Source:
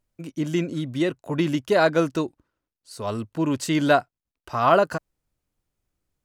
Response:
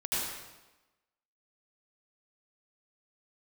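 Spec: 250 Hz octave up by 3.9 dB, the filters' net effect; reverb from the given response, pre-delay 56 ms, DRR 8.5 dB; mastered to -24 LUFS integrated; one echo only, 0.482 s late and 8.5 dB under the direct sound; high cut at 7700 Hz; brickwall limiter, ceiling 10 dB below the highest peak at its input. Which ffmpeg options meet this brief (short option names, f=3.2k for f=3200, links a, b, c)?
-filter_complex "[0:a]lowpass=7.7k,equalizer=f=250:t=o:g=5.5,alimiter=limit=-15dB:level=0:latency=1,aecho=1:1:482:0.376,asplit=2[a][b];[1:a]atrim=start_sample=2205,adelay=56[c];[b][c]afir=irnorm=-1:irlink=0,volume=-15.5dB[d];[a][d]amix=inputs=2:normalize=0,volume=1.5dB"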